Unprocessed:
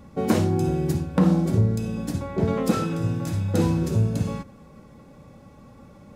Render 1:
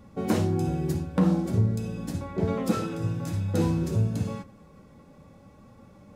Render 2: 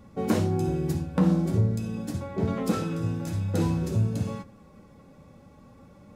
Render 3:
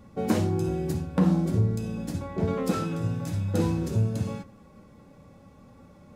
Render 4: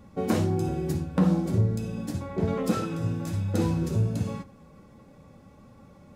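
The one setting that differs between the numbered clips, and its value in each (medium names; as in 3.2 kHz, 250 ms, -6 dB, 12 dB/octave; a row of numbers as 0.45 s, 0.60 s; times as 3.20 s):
flange, rate: 0.69 Hz, 0.46 Hz, 0.24 Hz, 1.4 Hz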